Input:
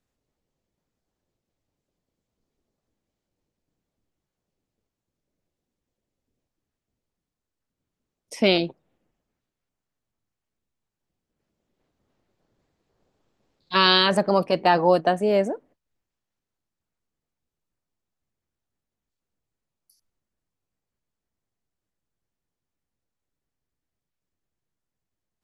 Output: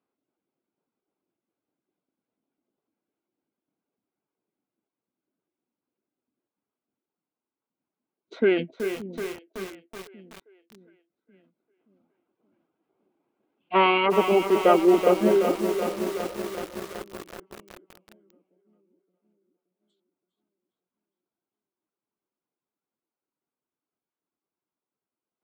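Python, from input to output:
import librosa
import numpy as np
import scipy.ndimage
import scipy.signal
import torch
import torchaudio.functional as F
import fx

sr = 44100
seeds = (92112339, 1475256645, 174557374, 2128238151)

y = fx.dereverb_blind(x, sr, rt60_s=0.55)
y = fx.bandpass_edges(y, sr, low_hz=330.0, high_hz=2600.0)
y = fx.echo_split(y, sr, split_hz=440.0, low_ms=573, high_ms=407, feedback_pct=52, wet_db=-13)
y = fx.formant_shift(y, sr, semitones=-6)
y = fx.notch(y, sr, hz=1800.0, q=5.5)
y = fx.echo_crushed(y, sr, ms=377, feedback_pct=80, bits=6, wet_db=-8.0)
y = y * 10.0 ** (2.0 / 20.0)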